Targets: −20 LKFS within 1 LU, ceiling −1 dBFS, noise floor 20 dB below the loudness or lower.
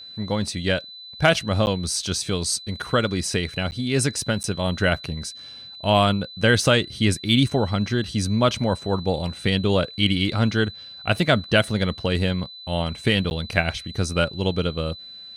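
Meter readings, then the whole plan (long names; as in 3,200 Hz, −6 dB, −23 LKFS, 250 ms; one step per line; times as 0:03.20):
number of dropouts 4; longest dropout 9.9 ms; interfering tone 4,000 Hz; level of the tone −38 dBFS; integrated loudness −22.5 LKFS; sample peak −4.0 dBFS; target loudness −20.0 LKFS
→ repair the gap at 0:01.66/0:03.71/0:04.43/0:13.30, 9.9 ms
notch filter 4,000 Hz, Q 30
level +2.5 dB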